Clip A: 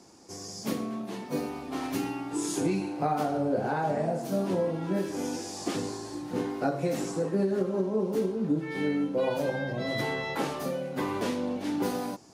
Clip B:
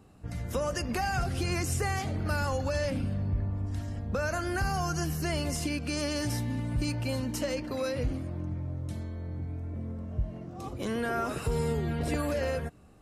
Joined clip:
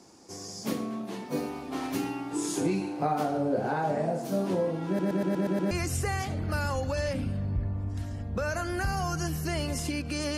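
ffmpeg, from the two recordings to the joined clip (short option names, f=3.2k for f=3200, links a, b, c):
-filter_complex "[0:a]apad=whole_dur=10.37,atrim=end=10.37,asplit=7[a][b][c][d][e][f][g];[a]atrim=end=4.992[h];[b]atrim=start=4.868:end=4.992[i];[c]atrim=start=4.868:end=4.992[j];[d]atrim=start=4.868:end=4.992[k];[e]atrim=start=4.868:end=4.992[l];[f]atrim=start=4.868:end=4.992[m];[g]atrim=start=4.868:end=4.992[n];[1:a]atrim=start=1.478:end=6.14[o];[h][i]acrossfade=d=0.004:c1=hsin:c2=hsin[p];[p][j]acrossfade=d=0.004:c1=hsin:c2=hsin[q];[q][k]acrossfade=d=0.004:c1=hsin:c2=hsin[r];[r][l]acrossfade=d=0.004:c1=hsin:c2=hsin[s];[s][m]acrossfade=d=0.004:c1=hsin:c2=hsin[t];[t][n]acrossfade=d=0.004:c1=hsin:c2=hsin[u];[u][o]acrossfade=d=0.004:c1=hsin:c2=hsin"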